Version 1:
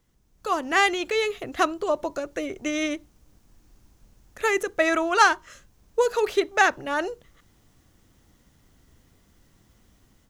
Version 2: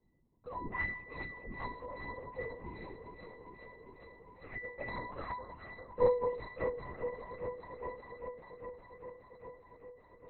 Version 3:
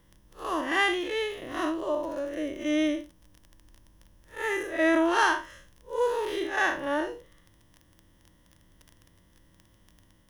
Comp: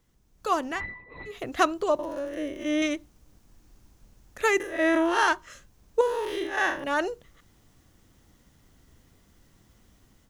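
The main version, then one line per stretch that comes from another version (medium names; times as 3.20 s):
1
0.73–1.33 s: from 2, crossfade 0.16 s
1.99–2.82 s: from 3
4.60–5.28 s: from 3
6.01–6.84 s: from 3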